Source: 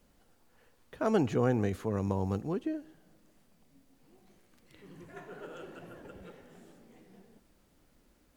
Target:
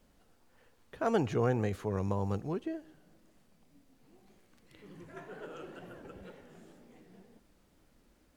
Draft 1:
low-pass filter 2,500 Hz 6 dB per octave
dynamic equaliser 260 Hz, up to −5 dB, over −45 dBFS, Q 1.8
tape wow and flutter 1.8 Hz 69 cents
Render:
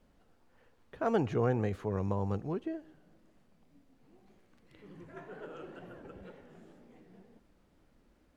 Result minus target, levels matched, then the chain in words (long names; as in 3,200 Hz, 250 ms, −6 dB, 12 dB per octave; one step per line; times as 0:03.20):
8,000 Hz band −7.0 dB
low-pass filter 9,900 Hz 6 dB per octave
dynamic equaliser 260 Hz, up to −5 dB, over −45 dBFS, Q 1.8
tape wow and flutter 1.8 Hz 69 cents